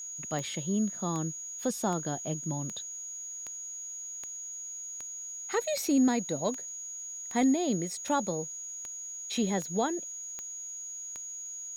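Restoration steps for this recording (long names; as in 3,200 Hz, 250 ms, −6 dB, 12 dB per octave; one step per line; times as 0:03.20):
click removal
notch filter 6,700 Hz, Q 30
downward expander −33 dBFS, range −21 dB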